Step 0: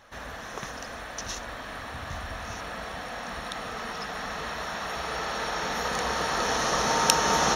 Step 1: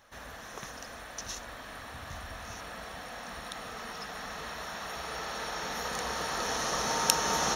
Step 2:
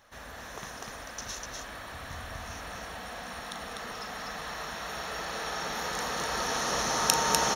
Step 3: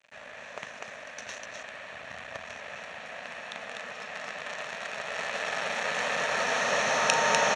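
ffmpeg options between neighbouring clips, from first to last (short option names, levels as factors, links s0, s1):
-af "highshelf=f=7300:g=9,volume=0.473"
-af "aecho=1:1:37.9|247.8:0.316|0.708"
-af "acrusher=bits=6:dc=4:mix=0:aa=0.000001,highpass=150,equalizer=f=330:t=q:w=4:g=-9,equalizer=f=600:t=q:w=4:g=10,equalizer=f=1800:t=q:w=4:g=7,equalizer=f=2500:t=q:w=4:g=9,equalizer=f=5000:t=q:w=4:g=-8,lowpass=f=6900:w=0.5412,lowpass=f=6900:w=1.3066"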